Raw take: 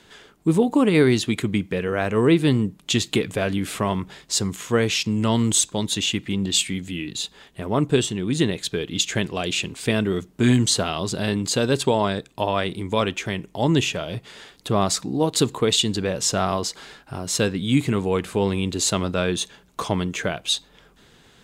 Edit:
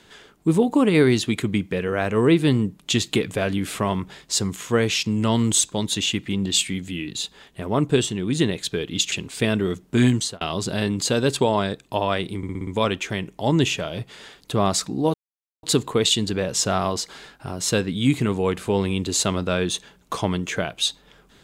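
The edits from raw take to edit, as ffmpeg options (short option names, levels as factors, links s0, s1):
-filter_complex "[0:a]asplit=9[s0][s1][s2][s3][s4][s5][s6][s7][s8];[s0]atrim=end=9.122[s9];[s1]atrim=start=9.578:end=10.87,asetpts=PTS-STARTPTS,afade=t=out:st=0.962:d=0.33[s10];[s2]atrim=start=10.87:end=12.892,asetpts=PTS-STARTPTS,afade=t=in:d=0.004:c=hsin[s11];[s3]atrim=start=12.828:end=12.892[s12];[s4]atrim=start=12.828:end=12.892[s13];[s5]atrim=start=12.828:end=12.892[s14];[s6]atrim=start=12.828:end=12.892[s15];[s7]atrim=start=12.828:end=15.3,asetpts=PTS-STARTPTS,afade=t=out:st=2.468:d=0.004:c=hsin,apad=pad_dur=0.49[s16];[s8]atrim=start=15.3,asetpts=PTS-STARTPTS,afade=t=in:d=0.004:c=hsin[s17];[s10][s11]concat=n=2:v=0:a=1[s18];[s9][s18]acrossfade=d=0.004:c1=hsin:c2=hsin[s19];[s19][s12]acrossfade=d=0.004:c1=hsin:c2=hsin[s20];[s20][s13]acrossfade=d=0.004:c1=hsin:c2=hsin[s21];[s21][s14]acrossfade=d=0.004:c1=hsin:c2=hsin[s22];[s22][s15]acrossfade=d=0.004:c1=hsin:c2=hsin[s23];[s16][s17]concat=n=2:v=0:a=1[s24];[s23][s24]acrossfade=d=0.004:c1=hsin:c2=hsin"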